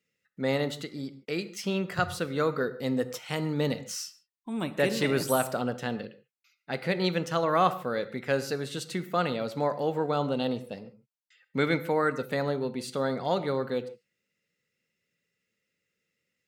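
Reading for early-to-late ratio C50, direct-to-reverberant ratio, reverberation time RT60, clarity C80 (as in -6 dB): 14.0 dB, 11.5 dB, no single decay rate, 16.5 dB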